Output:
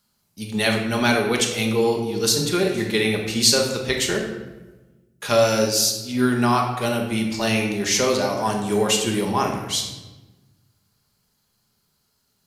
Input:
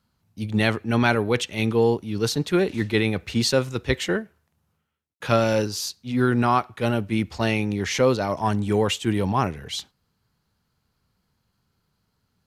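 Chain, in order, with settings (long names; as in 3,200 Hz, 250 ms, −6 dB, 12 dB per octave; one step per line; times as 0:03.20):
bass and treble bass −6 dB, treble +12 dB
rectangular room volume 640 cubic metres, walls mixed, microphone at 1.3 metres
level −1 dB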